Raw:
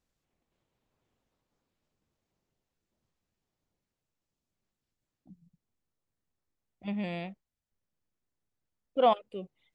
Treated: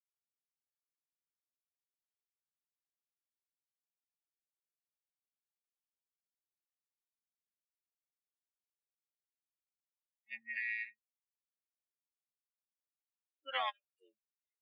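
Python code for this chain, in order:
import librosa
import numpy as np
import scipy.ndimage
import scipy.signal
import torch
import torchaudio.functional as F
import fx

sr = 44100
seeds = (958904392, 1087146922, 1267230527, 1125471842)

y = fx.bin_expand(x, sr, power=3.0)
y = fx.stretch_grains(y, sr, factor=1.5, grain_ms=22.0)
y = fx.ladder_bandpass(y, sr, hz=2000.0, resonance_pct=75)
y = y * librosa.db_to_amplitude(15.0)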